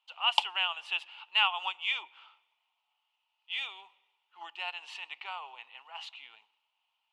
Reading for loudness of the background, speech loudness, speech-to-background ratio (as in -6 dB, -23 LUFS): -31.0 LUFS, -32.5 LUFS, -1.5 dB